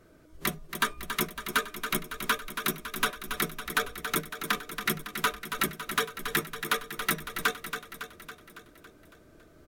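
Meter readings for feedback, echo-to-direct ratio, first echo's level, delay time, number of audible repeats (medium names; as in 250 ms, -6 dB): 59%, -6.5 dB, -8.5 dB, 278 ms, 6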